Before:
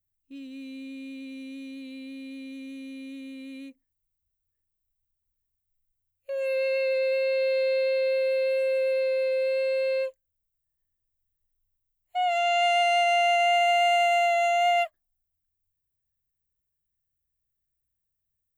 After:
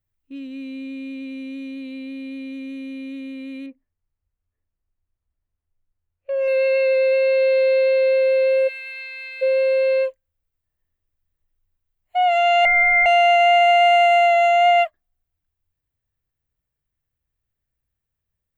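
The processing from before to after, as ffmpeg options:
-filter_complex "[0:a]asettb=1/sr,asplit=3[s0][s1][s2];[s0]atrim=end=3.664[s3];[s1]atrim=start=3.66:end=6.48,asetpts=PTS-STARTPTS,afade=t=in:d=0.004:c=qsin,afade=t=out:st=2.816:d=0.004:c=qsin,adynamicsmooth=sensitivity=3.5:basefreq=2500[s4];[s2]atrim=start=6.476[s5];[s3][s4]acrossfade=d=0.004:c1=hsin:c2=qsin[s6];[s6][s5]acrossfade=d=0.004:c1=qsin:c2=hsin,asplit=3[s7][s8][s9];[s7]afade=t=out:st=8.67:d=0.02[s10];[s8]highpass=f=1500:w=0.5412,highpass=f=1500:w=1.3066,afade=t=in:st=8.67:d=0.02,afade=t=out:st=9.41:d=0.02[s11];[s9]afade=t=in:st=9.41:d=0.02[s12];[s10][s11][s12]amix=inputs=3:normalize=0,asettb=1/sr,asplit=3[s13][s14][s15];[s13]atrim=end=12.654[s16];[s14]atrim=start=12.65:end=13.06,asetpts=PTS-STARTPTS,afade=t=in:d=0.004:c=qsin,afade=t=out:st=0.406:d=0.004:c=qsin,lowpass=f=2400:t=q:w=0.5098,lowpass=f=2400:t=q:w=0.6013,lowpass=f=2400:t=q:w=0.9,lowpass=f=2400:t=q:w=2.563,afreqshift=-2800[s17];[s15]atrim=start=13.056[s18];[s16][s17]acrossfade=d=0.004:c1=hsin:c2=qsin[s19];[s19][s18]acrossfade=d=0.004:c1=qsin:c2=hsin,bass=f=250:g=-1,treble=f=4000:g=-12,volume=2.51"

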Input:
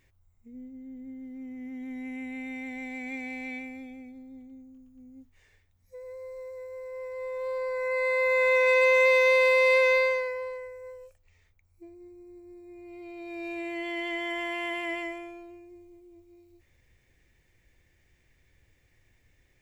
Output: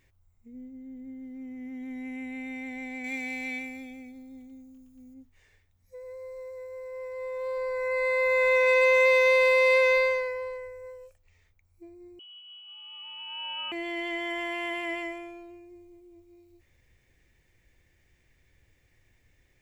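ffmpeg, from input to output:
-filter_complex "[0:a]asettb=1/sr,asplit=3[s0][s1][s2];[s0]atrim=end=3.044[s3];[s1]atrim=start=3.04:end=5.14,asetpts=PTS-STARTPTS,afade=t=in:d=0.004:c=qsin,afade=t=out:st=2.096:d=0.004:c=qsin,highshelf=f=2600:g=10[s4];[s2]atrim=start=5.136[s5];[s3][s4]acrossfade=d=0.004:c1=hsin:c2=qsin[s6];[s6][s5]acrossfade=d=0.004:c1=qsin:c2=hsin,asettb=1/sr,asplit=3[s7][s8][s9];[s7]atrim=end=7.574[s10];[s8]atrim=start=7.57:end=10.86,asetpts=PTS-STARTPTS,afade=t=in:d=0.004:c=qsin,afade=t=out:st=3.286:d=0.004:c=qsin,lowshelf=f=110:g=7[s11];[s9]atrim=start=10.856[s12];[s10][s11]acrossfade=d=0.004:c1=hsin:c2=qsin[s13];[s13][s12]acrossfade=d=0.004:c1=qsin:c2=hsin,asettb=1/sr,asplit=3[s14][s15][s16];[s14]atrim=end=12.194[s17];[s15]atrim=start=12.19:end=13.72,asetpts=PTS-STARTPTS,afade=t=in:d=0.004:c=qsin,afade=t=out:st=1.526:d=0.004:c=qsin,lowpass=f=2800:t=q:w=0.5098,lowpass=f=2800:t=q:w=0.6013,lowpass=f=2800:t=q:w=0.9,lowpass=f=2800:t=q:w=2.563,afreqshift=-3300[s18];[s16]atrim=start=13.716[s19];[s17][s18]acrossfade=d=0.004:c1=hsin:c2=qsin[s20];[s20][s19]acrossfade=d=0.004:c1=qsin:c2=hsin"

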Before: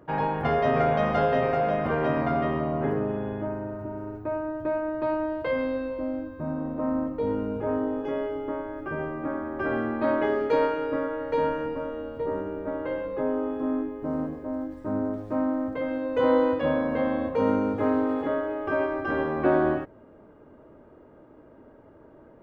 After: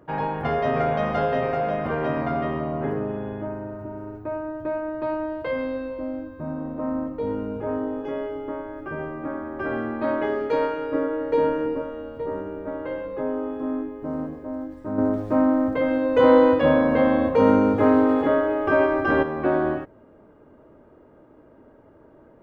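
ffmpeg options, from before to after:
-filter_complex "[0:a]asettb=1/sr,asplit=3[s0][s1][s2];[s0]atrim=end=10.944[s3];[s1]atrim=start=10.94:end=11.82,asetpts=PTS-STARTPTS,afade=t=in:d=0.004:c=qsin,afade=t=out:st=0.876:d=0.004:c=qsin,equalizer=f=360:t=o:w=0.77:g=10[s4];[s2]atrim=start=11.816[s5];[s3][s4]acrossfade=d=0.004:c1=hsin:c2=qsin[s6];[s6][s5]acrossfade=d=0.004:c1=qsin:c2=hsin,asettb=1/sr,asplit=3[s7][s8][s9];[s7]atrim=end=14.984[s10];[s8]atrim=start=14.98:end=19.23,asetpts=PTS-STARTPTS,afade=t=in:d=0.004:c=qsin,afade=t=out:st=4.246:d=0.004:c=qsin,acontrast=84[s11];[s9]atrim=start=19.226[s12];[s10][s11]acrossfade=d=0.004:c1=hsin:c2=qsin[s13];[s13][s12]acrossfade=d=0.004:c1=qsin:c2=hsin"

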